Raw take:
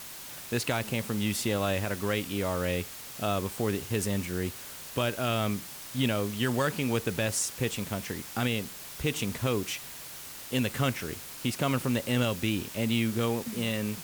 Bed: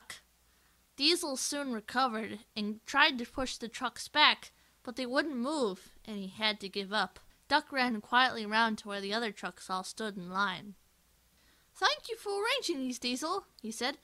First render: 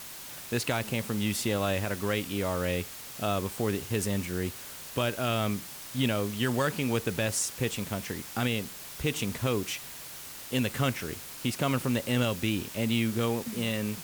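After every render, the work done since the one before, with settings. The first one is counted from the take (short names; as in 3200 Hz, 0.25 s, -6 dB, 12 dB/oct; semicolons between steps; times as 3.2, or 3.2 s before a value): nothing audible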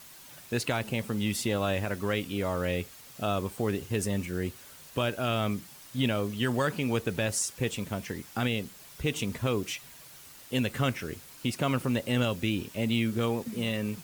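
denoiser 8 dB, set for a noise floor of -43 dBFS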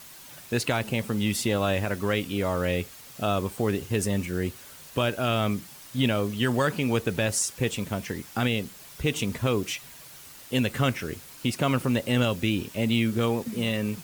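gain +3.5 dB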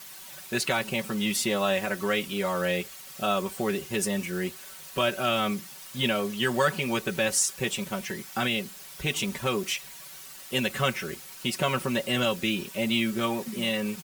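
low shelf 430 Hz -7.5 dB; comb 5.3 ms, depth 83%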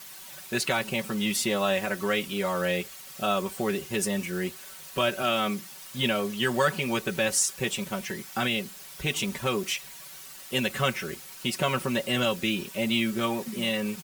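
5.22–5.76 HPF 140 Hz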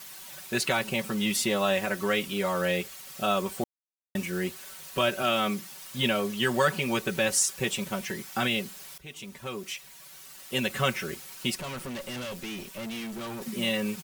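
3.64–4.15 mute; 8.98–10.92 fade in, from -18.5 dB; 11.55–13.42 tube stage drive 34 dB, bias 0.6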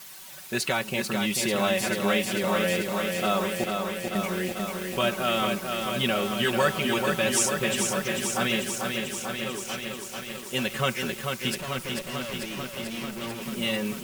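lo-fi delay 0.442 s, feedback 80%, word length 8-bit, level -4.5 dB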